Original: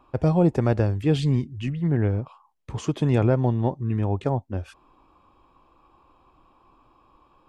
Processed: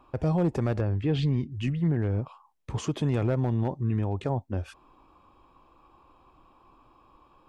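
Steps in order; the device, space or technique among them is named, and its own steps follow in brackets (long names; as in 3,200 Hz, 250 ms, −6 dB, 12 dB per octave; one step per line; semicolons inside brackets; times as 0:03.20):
clipper into limiter (hard clipping −12.5 dBFS, distortion −23 dB; brickwall limiter −18.5 dBFS, peak gain reduction 6 dB)
0:00.80–0:01.50: low-pass filter 2,600 Hz → 4,900 Hz 12 dB per octave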